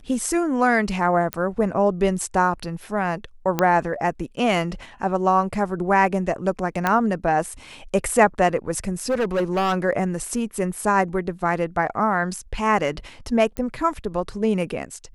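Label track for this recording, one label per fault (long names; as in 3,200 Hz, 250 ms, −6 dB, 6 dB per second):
1.330000	1.330000	click −9 dBFS
3.590000	3.590000	click −6 dBFS
6.870000	6.870000	click −7 dBFS
8.880000	9.740000	clipping −17.5 dBFS
13.570000	13.570000	click −15 dBFS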